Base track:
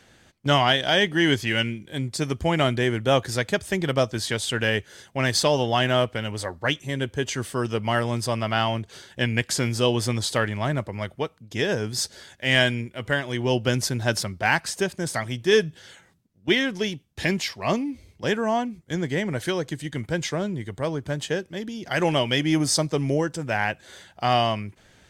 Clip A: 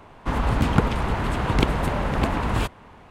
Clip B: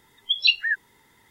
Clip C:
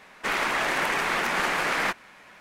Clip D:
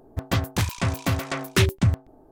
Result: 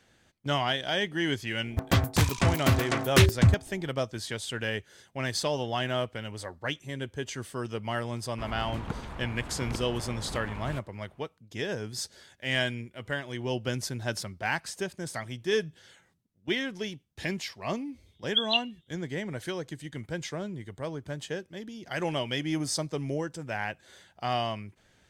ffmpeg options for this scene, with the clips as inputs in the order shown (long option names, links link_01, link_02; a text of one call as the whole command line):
ffmpeg -i bed.wav -i cue0.wav -i cue1.wav -i cue2.wav -i cue3.wav -filter_complex "[0:a]volume=-8.5dB[link_01];[2:a]asuperpass=centerf=3300:order=8:qfactor=3.3[link_02];[4:a]atrim=end=2.31,asetpts=PTS-STARTPTS,afade=type=in:duration=0.004:curve=hsin,afade=type=out:start_time=2.306:duration=0.004:curve=hsin,adelay=1600[link_03];[1:a]atrim=end=3.1,asetpts=PTS-STARTPTS,volume=-16dB,afade=type=in:duration=0.004:curve=hsin,afade=type=out:start_time=3.096:duration=0.004:curve=hsin,adelay=8120[link_04];[link_02]atrim=end=1.3,asetpts=PTS-STARTPTS,volume=-2dB,afade=type=in:duration=0.004:curve=hsin,afade=type=out:start_time=1.296:duration=0.004:curve=hsin,adelay=18060[link_05];[link_01][link_03][link_04][link_05]amix=inputs=4:normalize=0" out.wav